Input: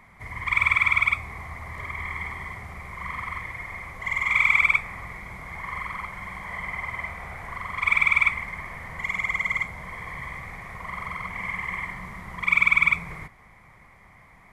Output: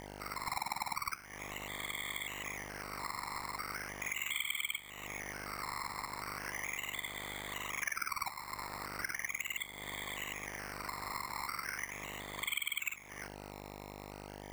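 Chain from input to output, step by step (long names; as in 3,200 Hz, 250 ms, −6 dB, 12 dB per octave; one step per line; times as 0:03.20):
low-pass filter 5,700 Hz 12 dB per octave
first difference
ring modulation 35 Hz
hum with harmonics 50 Hz, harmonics 19, −60 dBFS −1 dB per octave
sample-and-hold swept by an LFO 11×, swing 60% 0.38 Hz
dynamic equaliser 480 Hz, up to −6 dB, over −55 dBFS, Q 1.2
downward compressor 4 to 1, threshold −48 dBFS, peak gain reduction 18.5 dB
level +11 dB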